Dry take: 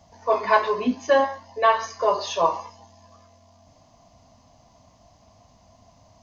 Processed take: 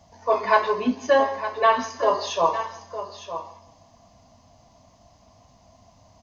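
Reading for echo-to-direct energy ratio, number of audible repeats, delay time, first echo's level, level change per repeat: -10.5 dB, 4, 0.164 s, -19.0 dB, no steady repeat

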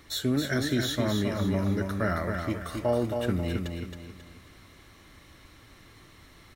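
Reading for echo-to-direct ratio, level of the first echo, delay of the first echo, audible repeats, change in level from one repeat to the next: -4.5 dB, -5.0 dB, 0.27 s, 4, -8.5 dB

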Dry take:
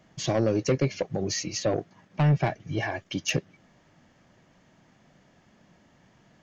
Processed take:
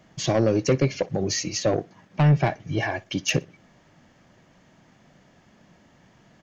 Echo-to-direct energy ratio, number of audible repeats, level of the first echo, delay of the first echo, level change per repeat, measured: -22.5 dB, 2, -23.0 dB, 60 ms, -11.5 dB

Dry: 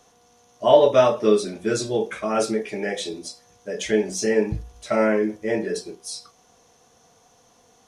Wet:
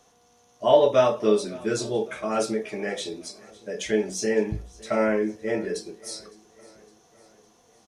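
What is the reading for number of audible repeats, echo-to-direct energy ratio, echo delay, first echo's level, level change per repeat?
3, -20.5 dB, 0.559 s, -22.0 dB, -5.5 dB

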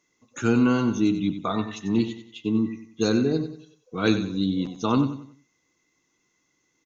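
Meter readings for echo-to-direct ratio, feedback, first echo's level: -10.0 dB, 35%, -10.5 dB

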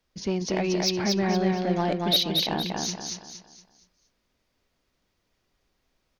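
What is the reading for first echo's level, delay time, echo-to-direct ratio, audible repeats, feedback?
-3.0 dB, 0.233 s, -2.5 dB, 4, 37%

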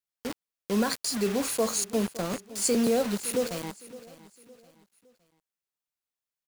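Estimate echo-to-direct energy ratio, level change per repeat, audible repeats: -17.5 dB, -8.5 dB, 3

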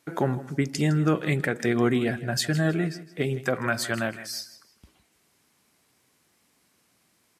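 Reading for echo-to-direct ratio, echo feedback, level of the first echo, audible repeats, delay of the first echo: -15.5 dB, 26%, -16.0 dB, 2, 0.16 s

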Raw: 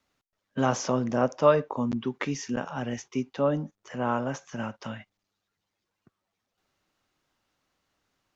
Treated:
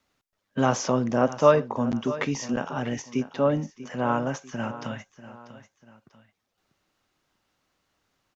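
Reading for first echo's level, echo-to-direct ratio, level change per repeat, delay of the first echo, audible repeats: -15.0 dB, -14.5 dB, -8.0 dB, 0.642 s, 2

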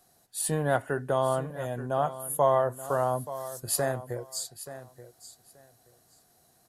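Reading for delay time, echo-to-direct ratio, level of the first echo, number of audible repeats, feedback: 0.879 s, -14.0 dB, -14.0 dB, 2, 18%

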